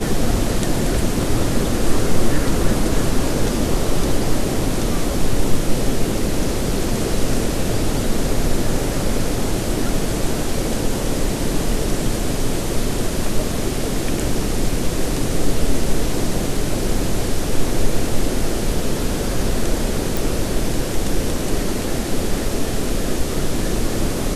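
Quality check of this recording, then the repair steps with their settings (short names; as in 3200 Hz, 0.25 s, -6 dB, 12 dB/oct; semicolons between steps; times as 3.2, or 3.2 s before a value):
20.17 pop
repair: de-click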